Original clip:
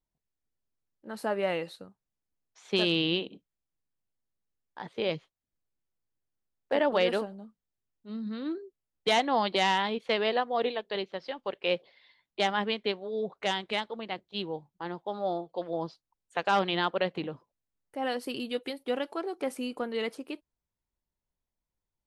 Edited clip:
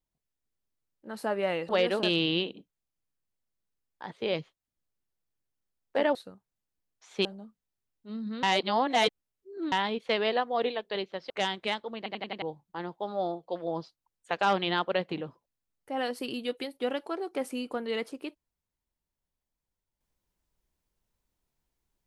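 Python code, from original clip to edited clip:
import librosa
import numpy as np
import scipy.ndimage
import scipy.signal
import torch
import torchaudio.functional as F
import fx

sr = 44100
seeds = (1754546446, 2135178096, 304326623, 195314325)

y = fx.edit(x, sr, fx.swap(start_s=1.69, length_s=1.1, other_s=6.91, other_length_s=0.34),
    fx.reverse_span(start_s=8.43, length_s=1.29),
    fx.cut(start_s=11.3, length_s=2.06),
    fx.stutter_over(start_s=14.03, slice_s=0.09, count=5), tone=tone)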